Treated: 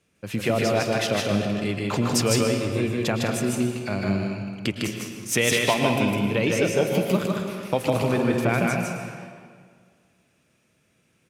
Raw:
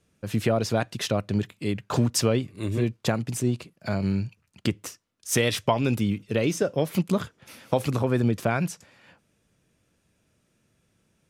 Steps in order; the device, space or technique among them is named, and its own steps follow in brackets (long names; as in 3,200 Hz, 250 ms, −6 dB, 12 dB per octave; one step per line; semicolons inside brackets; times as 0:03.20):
stadium PA (high-pass filter 130 Hz 6 dB per octave; parametric band 2,400 Hz +5.5 dB 0.59 octaves; loudspeakers that aren't time-aligned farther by 53 metres −2 dB, 70 metres −11 dB; convolution reverb RT60 1.9 s, pre-delay 102 ms, DRR 5 dB)